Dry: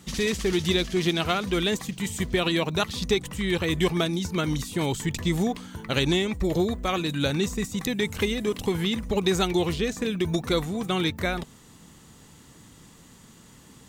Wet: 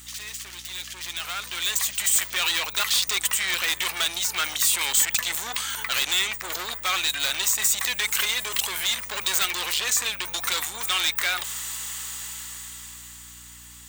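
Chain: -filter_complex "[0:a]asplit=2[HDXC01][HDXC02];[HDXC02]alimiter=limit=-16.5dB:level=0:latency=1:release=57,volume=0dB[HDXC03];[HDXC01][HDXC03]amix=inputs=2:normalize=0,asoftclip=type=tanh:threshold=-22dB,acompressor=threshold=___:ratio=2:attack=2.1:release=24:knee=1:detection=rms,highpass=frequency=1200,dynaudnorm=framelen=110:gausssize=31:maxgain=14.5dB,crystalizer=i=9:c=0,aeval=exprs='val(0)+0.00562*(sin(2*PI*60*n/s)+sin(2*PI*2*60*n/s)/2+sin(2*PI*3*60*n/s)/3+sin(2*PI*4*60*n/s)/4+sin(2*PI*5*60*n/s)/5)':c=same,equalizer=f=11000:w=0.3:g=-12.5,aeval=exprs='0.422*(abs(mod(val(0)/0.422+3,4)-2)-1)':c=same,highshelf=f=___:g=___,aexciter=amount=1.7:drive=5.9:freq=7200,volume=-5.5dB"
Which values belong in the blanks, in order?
-38dB, 6000, -4.5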